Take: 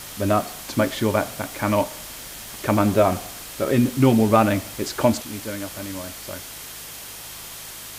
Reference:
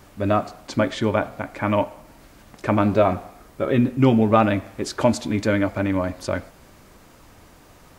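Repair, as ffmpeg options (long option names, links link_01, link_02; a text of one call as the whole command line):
ffmpeg -i in.wav -af "bandreject=frequency=52.4:width_type=h:width=4,bandreject=frequency=104.8:width_type=h:width=4,bandreject=frequency=157.2:width_type=h:width=4,bandreject=frequency=3200:width=30,afwtdn=0.016,asetnsamples=nb_out_samples=441:pad=0,asendcmd='5.22 volume volume 11dB',volume=0dB" out.wav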